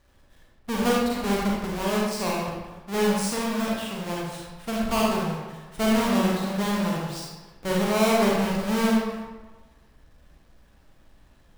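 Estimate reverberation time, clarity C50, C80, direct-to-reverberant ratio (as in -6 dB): 1.3 s, -1.5 dB, 1.5 dB, -4.5 dB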